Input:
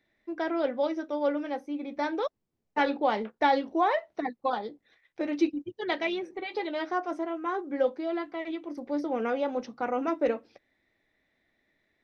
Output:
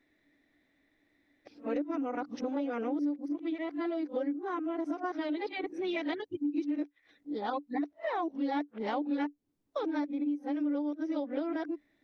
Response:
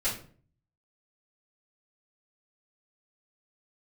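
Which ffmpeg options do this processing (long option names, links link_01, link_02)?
-af "areverse,equalizer=frequency=290:width=6.4:gain=15,acompressor=threshold=-31dB:ratio=5"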